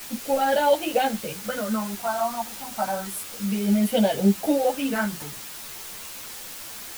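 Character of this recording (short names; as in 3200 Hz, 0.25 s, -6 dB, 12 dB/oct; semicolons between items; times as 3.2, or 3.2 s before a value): phasing stages 4, 0.3 Hz, lowest notch 420–1200 Hz; a quantiser's noise floor 8-bit, dither triangular; a shimmering, thickened sound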